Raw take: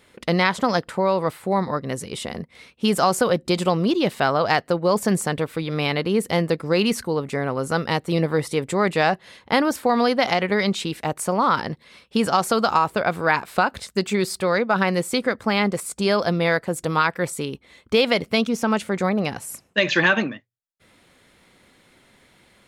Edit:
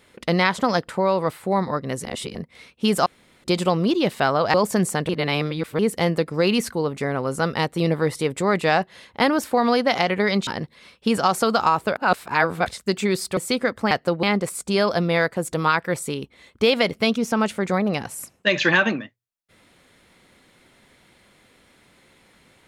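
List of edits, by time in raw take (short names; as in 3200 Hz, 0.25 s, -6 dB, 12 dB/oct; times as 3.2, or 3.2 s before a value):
2.05–2.35 reverse
3.06–3.44 room tone
4.54–4.86 move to 15.54
5.41–6.11 reverse
10.79–11.56 cut
13.05–13.75 reverse
14.46–15 cut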